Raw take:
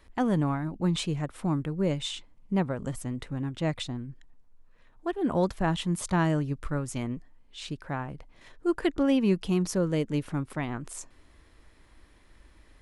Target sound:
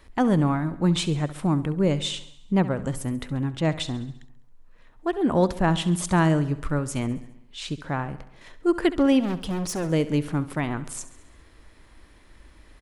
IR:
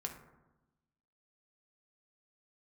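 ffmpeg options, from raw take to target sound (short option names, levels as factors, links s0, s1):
-filter_complex "[0:a]asettb=1/sr,asplit=3[s0][s1][s2];[s0]atrim=end=9.204[s3];[s1]atrim=start=9.2:end=9.9,asetpts=PTS-STARTPTS,afade=t=in:d=0.004:c=qsin,afade=t=out:st=0.696:d=0.004:c=qsin,volume=33.5,asoftclip=hard,volume=0.0299[s4];[s2]atrim=start=9.896[s5];[s3][s4]acrossfade=d=0.004:c1=hsin:c2=qsin[s6];[s6][s5]acrossfade=d=0.004:c1=qsin:c2=hsin,aecho=1:1:68|136|204|272|340|408:0.158|0.0919|0.0533|0.0309|0.0179|0.0104,volume=1.78"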